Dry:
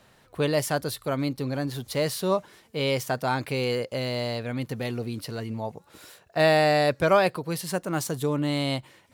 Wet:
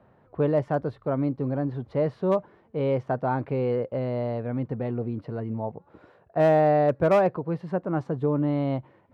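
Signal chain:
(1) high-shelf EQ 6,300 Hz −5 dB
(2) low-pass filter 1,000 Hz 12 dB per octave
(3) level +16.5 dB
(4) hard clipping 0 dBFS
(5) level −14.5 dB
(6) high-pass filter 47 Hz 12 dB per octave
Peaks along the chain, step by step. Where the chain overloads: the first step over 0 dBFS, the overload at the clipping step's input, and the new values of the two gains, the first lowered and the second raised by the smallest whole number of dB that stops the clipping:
−8.5, −11.5, +5.0, 0.0, −14.5, −12.5 dBFS
step 3, 5.0 dB
step 3 +11.5 dB, step 5 −9.5 dB

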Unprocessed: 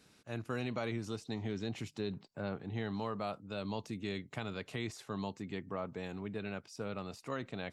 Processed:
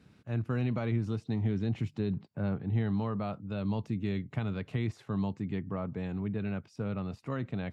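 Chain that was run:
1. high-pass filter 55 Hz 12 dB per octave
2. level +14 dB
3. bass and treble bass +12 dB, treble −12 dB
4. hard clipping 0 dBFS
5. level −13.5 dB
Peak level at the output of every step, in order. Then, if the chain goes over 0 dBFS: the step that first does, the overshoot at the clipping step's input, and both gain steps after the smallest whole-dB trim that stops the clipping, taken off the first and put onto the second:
−24.0, −10.0, −5.5, −5.5, −19.0 dBFS
no step passes full scale

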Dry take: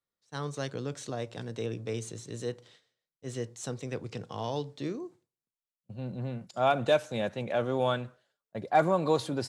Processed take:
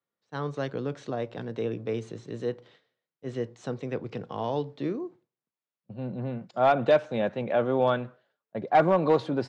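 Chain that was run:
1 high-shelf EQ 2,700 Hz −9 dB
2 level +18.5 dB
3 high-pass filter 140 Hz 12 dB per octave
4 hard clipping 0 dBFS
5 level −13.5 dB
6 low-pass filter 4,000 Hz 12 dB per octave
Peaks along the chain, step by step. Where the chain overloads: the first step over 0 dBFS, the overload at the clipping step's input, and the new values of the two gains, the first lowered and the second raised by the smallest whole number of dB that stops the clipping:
−14.5, +4.0, +4.5, 0.0, −13.5, −13.0 dBFS
step 2, 4.5 dB
step 2 +13.5 dB, step 5 −8.5 dB

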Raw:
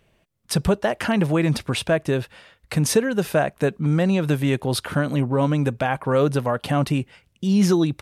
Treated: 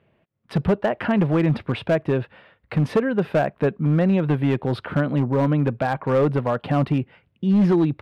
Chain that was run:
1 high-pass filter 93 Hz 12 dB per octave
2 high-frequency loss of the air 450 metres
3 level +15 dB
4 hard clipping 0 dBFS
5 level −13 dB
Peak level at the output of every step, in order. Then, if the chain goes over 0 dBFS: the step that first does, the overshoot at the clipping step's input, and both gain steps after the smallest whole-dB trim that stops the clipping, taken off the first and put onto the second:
−7.5, −8.5, +6.5, 0.0, −13.0 dBFS
step 3, 6.5 dB
step 3 +8 dB, step 5 −6 dB

